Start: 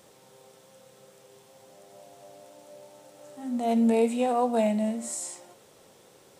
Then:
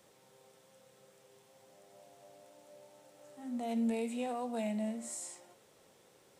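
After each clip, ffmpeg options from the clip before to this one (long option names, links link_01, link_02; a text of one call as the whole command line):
ffmpeg -i in.wav -filter_complex "[0:a]equalizer=frequency=2000:width=1.5:gain=2.5,acrossover=split=240|1900[link_01][link_02][link_03];[link_02]alimiter=limit=-24dB:level=0:latency=1:release=131[link_04];[link_01][link_04][link_03]amix=inputs=3:normalize=0,volume=-8.5dB" out.wav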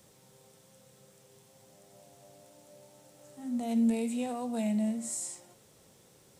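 ffmpeg -i in.wav -af "bass=frequency=250:gain=11,treble=frequency=4000:gain=7" out.wav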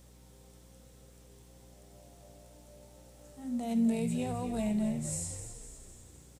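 ffmpeg -i in.wav -filter_complex "[0:a]asplit=2[link_01][link_02];[link_02]asplit=6[link_03][link_04][link_05][link_06][link_07][link_08];[link_03]adelay=254,afreqshift=-60,volume=-9.5dB[link_09];[link_04]adelay=508,afreqshift=-120,volume=-14.7dB[link_10];[link_05]adelay=762,afreqshift=-180,volume=-19.9dB[link_11];[link_06]adelay=1016,afreqshift=-240,volume=-25.1dB[link_12];[link_07]adelay=1270,afreqshift=-300,volume=-30.3dB[link_13];[link_08]adelay=1524,afreqshift=-360,volume=-35.5dB[link_14];[link_09][link_10][link_11][link_12][link_13][link_14]amix=inputs=6:normalize=0[link_15];[link_01][link_15]amix=inputs=2:normalize=0,aeval=exprs='val(0)+0.00178*(sin(2*PI*60*n/s)+sin(2*PI*2*60*n/s)/2+sin(2*PI*3*60*n/s)/3+sin(2*PI*4*60*n/s)/4+sin(2*PI*5*60*n/s)/5)':channel_layout=same,volume=-1.5dB" out.wav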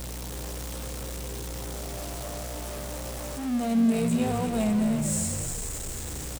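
ffmpeg -i in.wav -af "aeval=exprs='val(0)+0.5*0.0168*sgn(val(0))':channel_layout=same,aecho=1:1:353:0.316,volume=4.5dB" out.wav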